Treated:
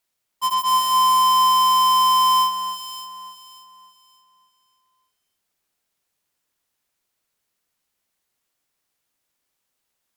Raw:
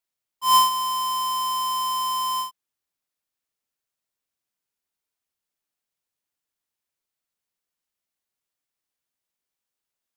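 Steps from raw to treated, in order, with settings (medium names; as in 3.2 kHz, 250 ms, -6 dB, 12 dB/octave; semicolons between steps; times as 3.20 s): sine folder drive 10 dB, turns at -13 dBFS; echo whose repeats swap between lows and highs 290 ms, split 2.2 kHz, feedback 53%, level -5 dB; trim -5 dB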